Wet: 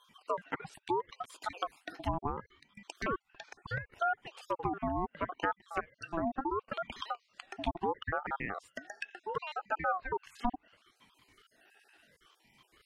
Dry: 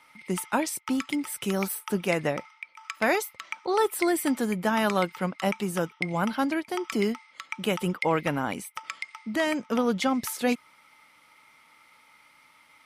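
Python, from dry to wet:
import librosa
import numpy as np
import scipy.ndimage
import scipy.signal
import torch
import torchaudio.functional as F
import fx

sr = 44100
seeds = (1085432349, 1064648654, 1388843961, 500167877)

y = fx.spec_dropout(x, sr, seeds[0], share_pct=53)
y = scipy.signal.sosfilt(scipy.signal.butter(4, 89.0, 'highpass', fs=sr, output='sos'), y)
y = fx.env_lowpass_down(y, sr, base_hz=460.0, full_db=-24.0)
y = fx.ring_lfo(y, sr, carrier_hz=780.0, swing_pct=40, hz=0.72)
y = y * 10.0 ** (-1.5 / 20.0)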